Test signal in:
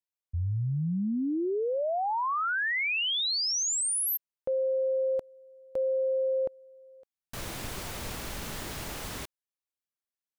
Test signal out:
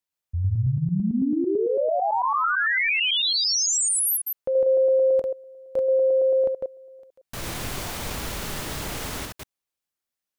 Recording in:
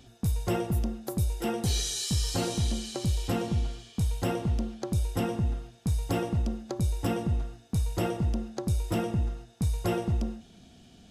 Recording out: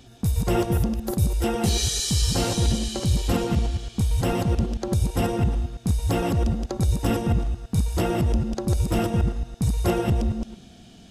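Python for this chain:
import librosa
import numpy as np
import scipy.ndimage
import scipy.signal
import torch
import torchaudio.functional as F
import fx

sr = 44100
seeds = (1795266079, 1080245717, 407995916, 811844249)

y = fx.reverse_delay(x, sr, ms=111, wet_db=-3.0)
y = y * librosa.db_to_amplitude(4.5)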